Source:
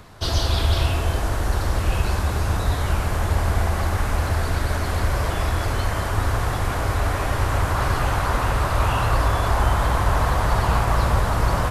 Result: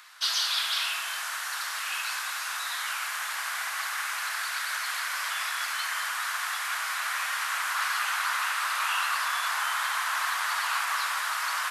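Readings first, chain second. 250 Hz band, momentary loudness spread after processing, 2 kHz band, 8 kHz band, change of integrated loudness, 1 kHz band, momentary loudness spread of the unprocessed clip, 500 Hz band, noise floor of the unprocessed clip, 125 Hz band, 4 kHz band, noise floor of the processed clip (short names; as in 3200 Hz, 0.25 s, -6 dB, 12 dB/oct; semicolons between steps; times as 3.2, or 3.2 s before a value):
under -40 dB, 5 LU, +1.5 dB, +2.0 dB, -6.0 dB, -6.0 dB, 3 LU, -25.0 dB, -25 dBFS, under -40 dB, +2.0 dB, -34 dBFS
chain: HPF 1300 Hz 24 dB/oct; gain +2 dB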